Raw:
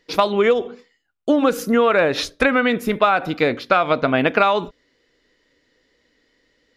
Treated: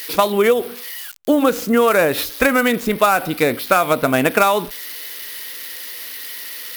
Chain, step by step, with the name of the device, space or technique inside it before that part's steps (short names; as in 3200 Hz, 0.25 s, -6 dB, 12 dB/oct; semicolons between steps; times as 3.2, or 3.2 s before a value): budget class-D amplifier (switching dead time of 0.063 ms; switching spikes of -19 dBFS); gain +1.5 dB